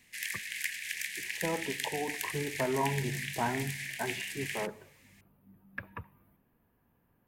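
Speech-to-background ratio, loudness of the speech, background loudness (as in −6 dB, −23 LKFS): 0.5 dB, −36.5 LKFS, −37.0 LKFS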